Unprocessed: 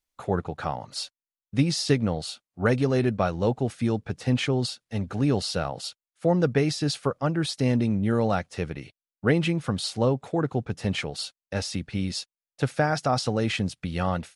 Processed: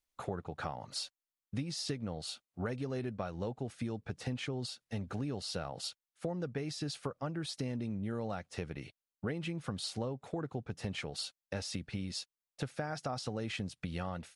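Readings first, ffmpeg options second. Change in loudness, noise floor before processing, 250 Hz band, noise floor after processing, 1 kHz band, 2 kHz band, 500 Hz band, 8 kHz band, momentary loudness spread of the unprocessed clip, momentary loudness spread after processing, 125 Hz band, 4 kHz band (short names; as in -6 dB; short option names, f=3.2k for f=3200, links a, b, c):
-13.0 dB, under -85 dBFS, -13.5 dB, under -85 dBFS, -13.5 dB, -13.0 dB, -14.0 dB, -9.0 dB, 9 LU, 5 LU, -13.0 dB, -9.5 dB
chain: -af "acompressor=threshold=-32dB:ratio=6,volume=-3dB"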